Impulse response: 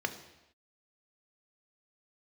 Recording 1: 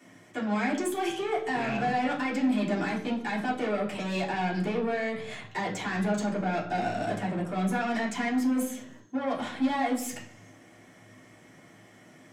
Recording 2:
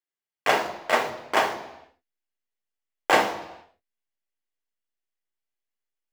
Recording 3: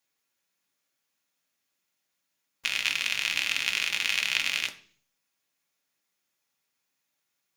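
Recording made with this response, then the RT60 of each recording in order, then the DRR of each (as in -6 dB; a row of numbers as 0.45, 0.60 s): 2; 0.65, 0.85, 0.45 s; -7.0, 6.5, 4.0 dB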